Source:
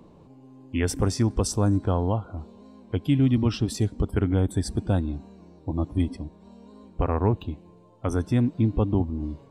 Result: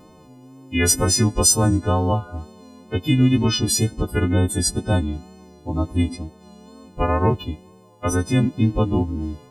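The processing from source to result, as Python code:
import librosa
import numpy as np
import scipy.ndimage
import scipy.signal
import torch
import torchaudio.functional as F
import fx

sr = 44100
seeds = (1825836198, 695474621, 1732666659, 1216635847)

y = fx.freq_snap(x, sr, grid_st=3)
y = fx.vibrato(y, sr, rate_hz=2.1, depth_cents=36.0)
y = y * 10.0 ** (4.5 / 20.0)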